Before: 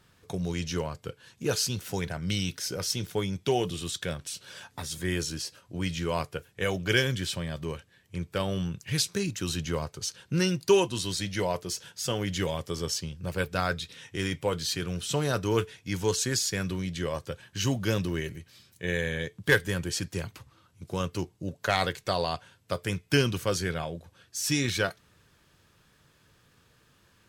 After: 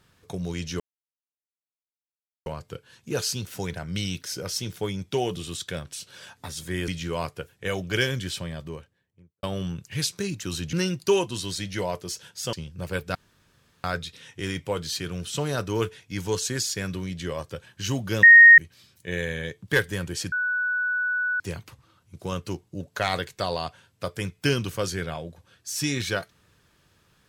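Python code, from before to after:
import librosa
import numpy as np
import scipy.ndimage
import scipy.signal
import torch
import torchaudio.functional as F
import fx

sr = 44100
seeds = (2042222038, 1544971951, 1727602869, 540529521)

y = fx.studio_fade_out(x, sr, start_s=7.33, length_s=1.06)
y = fx.edit(y, sr, fx.insert_silence(at_s=0.8, length_s=1.66),
    fx.cut(start_s=5.22, length_s=0.62),
    fx.cut(start_s=9.69, length_s=0.65),
    fx.cut(start_s=12.14, length_s=0.84),
    fx.insert_room_tone(at_s=13.6, length_s=0.69),
    fx.bleep(start_s=17.99, length_s=0.35, hz=1860.0, db=-6.5),
    fx.insert_tone(at_s=20.08, length_s=1.08, hz=1480.0, db=-22.5), tone=tone)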